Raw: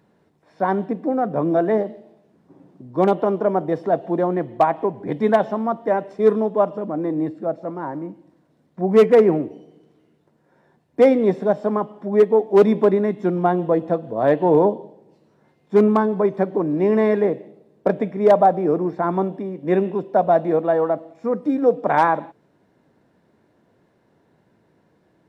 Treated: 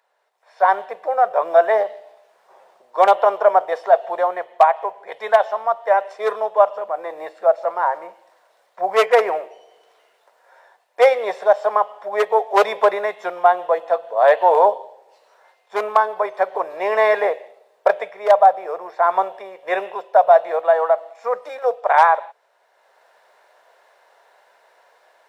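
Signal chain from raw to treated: inverse Chebyshev high-pass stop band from 300 Hz, stop band 40 dB; AGC gain up to 14 dB; gain -1 dB

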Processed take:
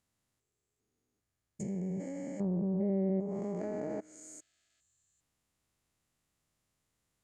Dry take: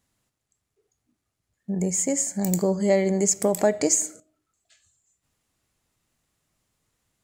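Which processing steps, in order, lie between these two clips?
stepped spectrum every 0.4 s; dynamic EQ 560 Hz, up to -5 dB, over -35 dBFS, Q 1.2; treble ducked by the level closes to 610 Hz, closed at -23 dBFS; gain -5.5 dB

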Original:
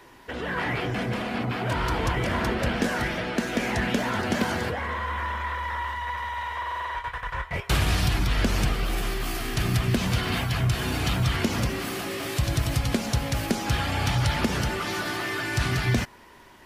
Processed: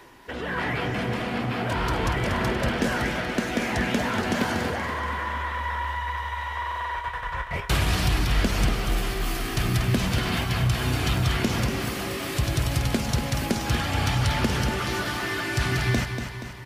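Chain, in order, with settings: reverse; upward compressor, threshold -42 dBFS; reverse; feedback echo 0.238 s, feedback 54%, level -8 dB

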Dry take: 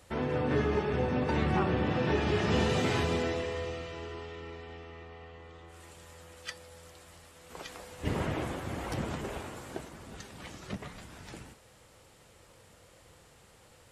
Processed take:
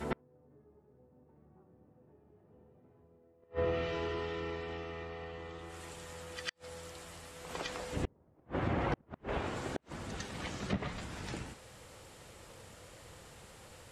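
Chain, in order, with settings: treble ducked by the level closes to 750 Hz, closed at -28.5 dBFS; reverse echo 0.102 s -9.5 dB; flipped gate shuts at -25 dBFS, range -38 dB; gain +4 dB

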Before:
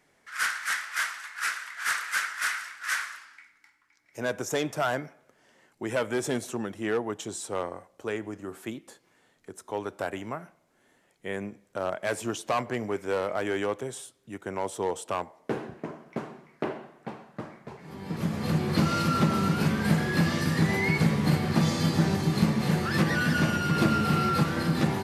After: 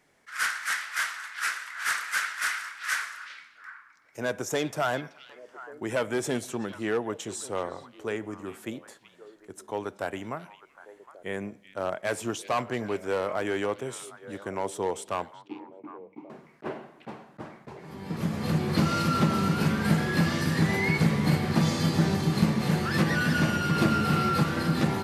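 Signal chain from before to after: 15.36–16.3 vowel filter u; delay with a stepping band-pass 0.38 s, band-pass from 3200 Hz, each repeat -1.4 oct, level -10 dB; attack slew limiter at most 580 dB/s

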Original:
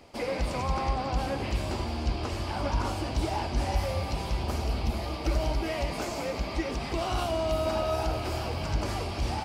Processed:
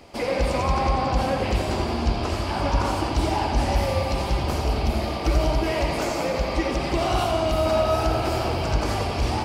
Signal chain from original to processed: tape echo 87 ms, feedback 80%, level -4 dB, low-pass 2900 Hz; gain +5.5 dB

